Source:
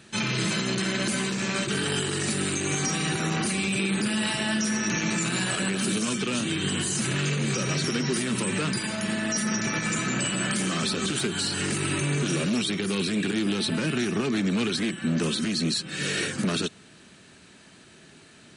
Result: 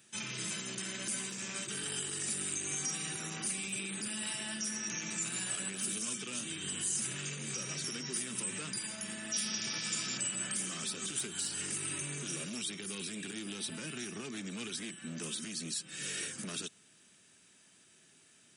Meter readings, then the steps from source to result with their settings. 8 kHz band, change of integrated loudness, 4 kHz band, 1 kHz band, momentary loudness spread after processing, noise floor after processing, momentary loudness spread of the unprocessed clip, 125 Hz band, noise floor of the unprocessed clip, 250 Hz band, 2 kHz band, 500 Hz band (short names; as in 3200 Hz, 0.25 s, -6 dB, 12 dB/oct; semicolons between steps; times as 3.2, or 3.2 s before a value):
-4.0 dB, -10.0 dB, -10.5 dB, -15.5 dB, 6 LU, -63 dBFS, 2 LU, -18.0 dB, -52 dBFS, -17.5 dB, -13.0 dB, -17.0 dB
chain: painted sound noise, 9.33–10.18, 2200–5800 Hz -31 dBFS; HPF 88 Hz; pre-emphasis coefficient 0.8; notch 4200 Hz, Q 6.5; gain -3.5 dB